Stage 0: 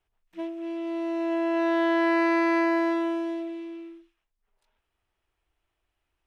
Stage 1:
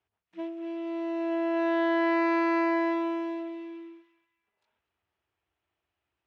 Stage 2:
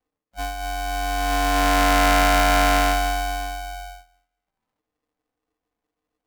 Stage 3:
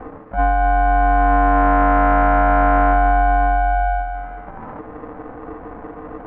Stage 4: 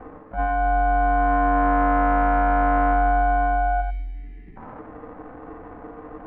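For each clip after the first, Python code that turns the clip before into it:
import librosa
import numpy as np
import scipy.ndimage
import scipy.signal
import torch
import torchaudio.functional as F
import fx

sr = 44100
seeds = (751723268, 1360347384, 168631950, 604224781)

y1 = scipy.signal.sosfilt(scipy.signal.butter(4, 74.0, 'highpass', fs=sr, output='sos'), x)
y1 = fx.air_absorb(y1, sr, metres=88.0)
y1 = fx.echo_banded(y1, sr, ms=236, feedback_pct=45, hz=2000.0, wet_db=-13)
y1 = y1 * librosa.db_to_amplitude(-2.0)
y2 = fx.wiener(y1, sr, points=41)
y2 = fx.doubler(y2, sr, ms=15.0, db=-8.0)
y2 = y2 * np.sign(np.sin(2.0 * np.pi * 380.0 * np.arange(len(y2)) / sr))
y2 = y2 * librosa.db_to_amplitude(6.5)
y3 = fx.rider(y2, sr, range_db=4, speed_s=0.5)
y3 = scipy.signal.sosfilt(scipy.signal.butter(4, 1500.0, 'lowpass', fs=sr, output='sos'), y3)
y3 = fx.env_flatten(y3, sr, amount_pct=70)
y3 = y3 * librosa.db_to_amplitude(6.0)
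y4 = fx.spec_box(y3, sr, start_s=3.81, length_s=0.76, low_hz=450.0, high_hz=1700.0, gain_db=-29)
y4 = y4 + 10.0 ** (-7.0 / 20.0) * np.pad(y4, (int(91 * sr / 1000.0), 0))[:len(y4)]
y4 = y4 * librosa.db_to_amplitude(-6.5)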